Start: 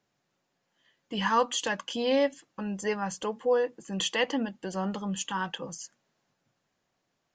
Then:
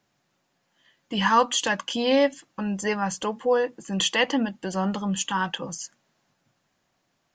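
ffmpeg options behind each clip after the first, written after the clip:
ffmpeg -i in.wav -af "equalizer=frequency=450:width_type=o:width=0.49:gain=-4,volume=6dB" out.wav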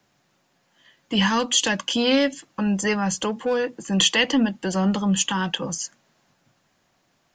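ffmpeg -i in.wav -filter_complex "[0:a]acrossover=split=320|620|2000[link_01][link_02][link_03][link_04];[link_02]asoftclip=type=tanh:threshold=-34dB[link_05];[link_03]acompressor=threshold=-37dB:ratio=6[link_06];[link_01][link_05][link_06][link_04]amix=inputs=4:normalize=0,volume=6dB" out.wav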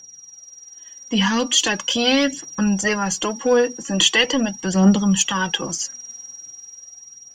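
ffmpeg -i in.wav -af "aeval=exprs='val(0)+0.0126*sin(2*PI*5700*n/s)':channel_layout=same,dynaudnorm=framelen=390:gausssize=7:maxgain=11.5dB,aphaser=in_gain=1:out_gain=1:delay=4.4:decay=0.52:speed=0.41:type=triangular,volume=-3dB" out.wav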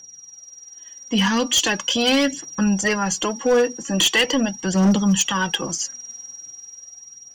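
ffmpeg -i in.wav -af "volume=12dB,asoftclip=hard,volume=-12dB" out.wav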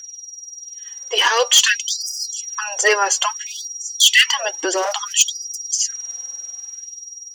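ffmpeg -i in.wav -af "afftfilt=real='re*gte(b*sr/1024,300*pow(4900/300,0.5+0.5*sin(2*PI*0.59*pts/sr)))':imag='im*gte(b*sr/1024,300*pow(4900/300,0.5+0.5*sin(2*PI*0.59*pts/sr)))':win_size=1024:overlap=0.75,volume=6.5dB" out.wav

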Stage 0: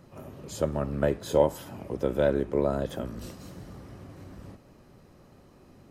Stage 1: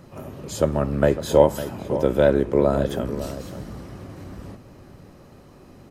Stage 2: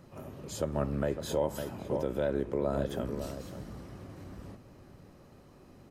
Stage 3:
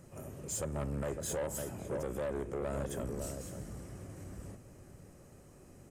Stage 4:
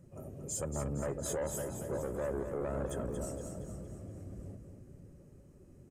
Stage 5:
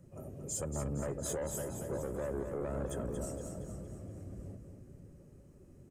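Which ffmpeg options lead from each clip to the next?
ffmpeg -i in.wav -filter_complex "[0:a]asplit=2[link_01][link_02];[link_02]adelay=553.9,volume=-12dB,highshelf=frequency=4000:gain=-12.5[link_03];[link_01][link_03]amix=inputs=2:normalize=0,volume=7dB" out.wav
ffmpeg -i in.wav -af "alimiter=limit=-11dB:level=0:latency=1:release=156,volume=-8dB" out.wav
ffmpeg -i in.wav -af "equalizer=frequency=250:width_type=o:width=1:gain=-4,equalizer=frequency=1000:width_type=o:width=1:gain=-6,equalizer=frequency=4000:width_type=o:width=1:gain=-10,equalizer=frequency=8000:width_type=o:width=1:gain=12,asoftclip=type=tanh:threshold=-32dB,volume=1dB" out.wav
ffmpeg -i in.wav -filter_complex "[0:a]afftdn=noise_reduction=12:noise_floor=-51,asplit=2[link_01][link_02];[link_02]aecho=0:1:232|464|696|928|1160|1392:0.398|0.199|0.0995|0.0498|0.0249|0.0124[link_03];[link_01][link_03]amix=inputs=2:normalize=0" out.wav
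ffmpeg -i in.wav -filter_complex "[0:a]acrossover=split=400|3000[link_01][link_02][link_03];[link_02]acompressor=threshold=-43dB:ratio=1.5[link_04];[link_01][link_04][link_03]amix=inputs=3:normalize=0" out.wav

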